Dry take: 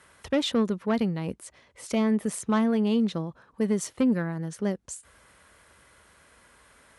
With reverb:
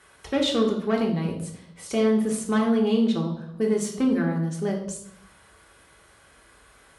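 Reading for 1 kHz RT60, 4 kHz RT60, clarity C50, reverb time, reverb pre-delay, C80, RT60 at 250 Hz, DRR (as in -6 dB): 0.65 s, 0.70 s, 7.0 dB, 0.75 s, 3 ms, 10.0 dB, 1.0 s, -1.0 dB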